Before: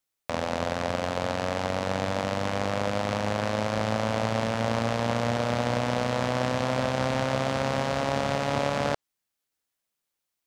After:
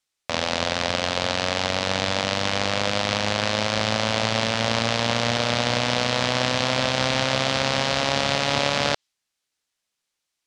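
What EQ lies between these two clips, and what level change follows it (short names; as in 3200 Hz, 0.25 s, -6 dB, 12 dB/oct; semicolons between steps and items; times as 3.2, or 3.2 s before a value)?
dynamic EQ 4000 Hz, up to +7 dB, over -48 dBFS, Q 0.73; air absorption 63 m; high shelf 2200 Hz +10.5 dB; +1.0 dB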